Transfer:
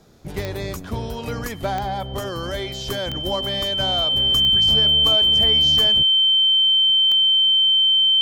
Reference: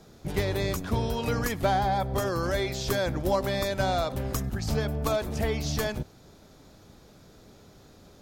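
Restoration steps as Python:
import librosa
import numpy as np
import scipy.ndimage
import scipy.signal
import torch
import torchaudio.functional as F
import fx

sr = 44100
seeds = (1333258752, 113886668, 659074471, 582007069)

y = fx.fix_declick_ar(x, sr, threshold=10.0)
y = fx.notch(y, sr, hz=3100.0, q=30.0)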